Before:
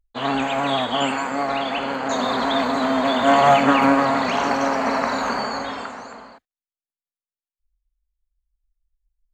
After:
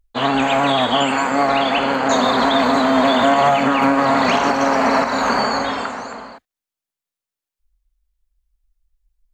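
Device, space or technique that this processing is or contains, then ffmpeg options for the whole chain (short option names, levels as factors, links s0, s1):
stacked limiters: -af "alimiter=limit=0.335:level=0:latency=1:release=371,alimiter=limit=0.224:level=0:latency=1:release=126,volume=2.24"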